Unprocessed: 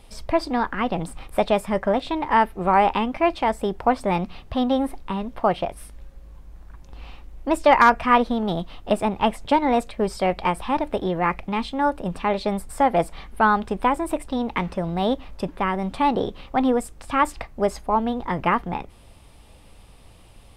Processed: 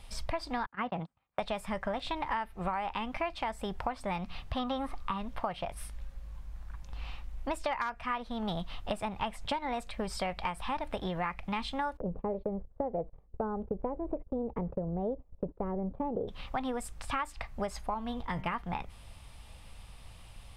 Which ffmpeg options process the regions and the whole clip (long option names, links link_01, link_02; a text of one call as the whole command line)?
ffmpeg -i in.wav -filter_complex "[0:a]asettb=1/sr,asplit=3[link_01][link_02][link_03];[link_01]atrim=end=0.664[link_04];[link_02]atrim=start=0.66:end=1.39,asetpts=PTS-STARTPTS,afade=type=in:duration=0.004:curve=qsin,afade=type=out:start_time=0.726:duration=0.004:curve=qsin,agate=range=-32dB:threshold=-28dB:ratio=16:release=100:detection=peak,highpass=140,lowpass=5000,highshelf=frequency=2600:gain=-12[link_05];[link_03]atrim=start=1.386[link_06];[link_04][link_05]acrossfade=duration=0.004:curve1=hsin:curve2=qsin[link_07];[link_07][link_06]acrossfade=duration=0.004:curve1=qsin:curve2=hsin,asettb=1/sr,asplit=3[link_08][link_09][link_10];[link_08]atrim=end=4.594[link_11];[link_09]atrim=start=4.59:end=5.18,asetpts=PTS-STARTPTS,afade=type=in:duration=0.004:curve=qsin,afade=type=out:start_time=0.586:duration=0.004:curve=qsin,equalizer=frequency=1200:width_type=o:width=0.26:gain=13.5,acrossover=split=6200[link_12][link_13];[link_13]acompressor=threshold=-59dB:ratio=4:attack=1:release=60[link_14];[link_12][link_14]amix=inputs=2:normalize=0[link_15];[link_10]atrim=start=5.176[link_16];[link_11][link_15]acrossfade=duration=0.004:curve1=hsin:curve2=qsin[link_17];[link_17][link_16]acrossfade=duration=0.004:curve1=qsin:curve2=hsin,asettb=1/sr,asplit=3[link_18][link_19][link_20];[link_18]atrim=end=11.974[link_21];[link_19]atrim=start=11.97:end=16.28,asetpts=PTS-STARTPTS,afade=type=in:duration=0.004:curve=qsin,afade=type=out:start_time=4.306:duration=0.004:curve=qsin,lowpass=frequency=460:width_type=q:width=3.4,agate=range=-22dB:threshold=-34dB:ratio=16:release=100:detection=peak[link_22];[link_20]atrim=start=16.276[link_23];[link_21][link_22]acrossfade=duration=0.004:curve1=hsin:curve2=qsin[link_24];[link_24][link_23]acrossfade=duration=0.004:curve1=qsin:curve2=hsin,asettb=1/sr,asplit=3[link_25][link_26][link_27];[link_25]atrim=end=17.944[link_28];[link_26]atrim=start=17.94:end=18.55,asetpts=PTS-STARTPTS,afade=type=in:duration=0.004:curve=qsin,afade=type=out:start_time=0.606:duration=0.004:curve=qsin,agate=range=-33dB:threshold=-29dB:ratio=3:release=100:detection=peak,equalizer=frequency=1100:width_type=o:width=2.6:gain=-5.5,bandreject=frequency=92.34:width_type=h:width=4,bandreject=frequency=184.68:width_type=h:width=4,bandreject=frequency=277.02:width_type=h:width=4,bandreject=frequency=369.36:width_type=h:width=4,bandreject=frequency=461.7:width_type=h:width=4,bandreject=frequency=554.04:width_type=h:width=4,bandreject=frequency=646.38:width_type=h:width=4,bandreject=frequency=738.72:width_type=h:width=4,bandreject=frequency=831.06:width_type=h:width=4,bandreject=frequency=923.4:width_type=h:width=4,bandreject=frequency=1015.74:width_type=h:width=4,bandreject=frequency=1108.08:width_type=h:width=4,bandreject=frequency=1200.42:width_type=h:width=4,bandreject=frequency=1292.76:width_type=h:width=4,bandreject=frequency=1385.1:width_type=h:width=4,bandreject=frequency=1477.44:width_type=h:width=4,bandreject=frequency=1569.78:width_type=h:width=4,bandreject=frequency=1662.12:width_type=h:width=4,bandreject=frequency=1754.46:width_type=h:width=4,bandreject=frequency=1846.8:width_type=h:width=4,bandreject=frequency=1939.14:width_type=h:width=4,bandreject=frequency=2031.48:width_type=h:width=4,bandreject=frequency=2123.82:width_type=h:width=4,bandreject=frequency=2216.16:width_type=h:width=4,bandreject=frequency=2308.5:width_type=h:width=4,bandreject=frequency=2400.84:width_type=h:width=4,bandreject=frequency=2493.18:width_type=h:width=4,bandreject=frequency=2585.52:width_type=h:width=4,bandreject=frequency=2677.86:width_type=h:width=4,bandreject=frequency=2770.2:width_type=h:width=4,bandreject=frequency=2862.54:width_type=h:width=4,bandreject=frequency=2954.88:width_type=h:width=4,bandreject=frequency=3047.22:width_type=h:width=4,bandreject=frequency=3139.56:width_type=h:width=4,bandreject=frequency=3231.9:width_type=h:width=4,bandreject=frequency=3324.24:width_type=h:width=4,bandreject=frequency=3416.58:width_type=h:width=4[link_29];[link_27]atrim=start=18.546[link_30];[link_28][link_29]acrossfade=duration=0.004:curve1=hsin:curve2=qsin[link_31];[link_31][link_30]acrossfade=duration=0.004:curve1=qsin:curve2=hsin,equalizer=frequency=350:width_type=o:width=1.6:gain=-11.5,acompressor=threshold=-30dB:ratio=12,highshelf=frequency=9500:gain=-5" out.wav